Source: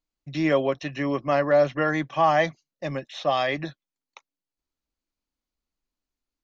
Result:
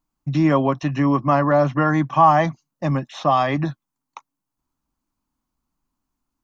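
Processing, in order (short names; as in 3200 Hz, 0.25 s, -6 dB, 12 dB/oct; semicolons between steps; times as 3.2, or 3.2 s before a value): ten-band EQ 125 Hz +7 dB, 250 Hz +6 dB, 500 Hz -8 dB, 1000 Hz +10 dB, 2000 Hz -6 dB, 4000 Hz -7 dB; in parallel at +1 dB: compressor, threshold -27 dBFS, peak gain reduction 14.5 dB; on the sum: gain +1 dB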